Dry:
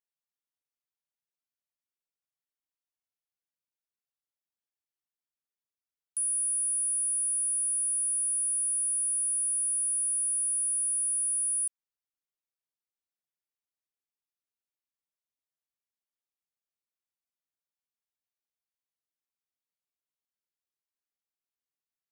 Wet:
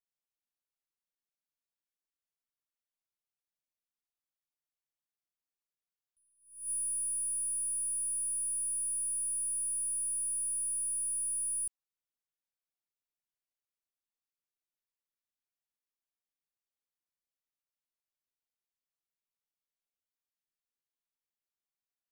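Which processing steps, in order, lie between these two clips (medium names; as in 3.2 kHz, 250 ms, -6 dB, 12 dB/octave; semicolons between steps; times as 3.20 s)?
partial rectifier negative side -3 dB; attacks held to a fixed rise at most 120 dB/s; trim -4 dB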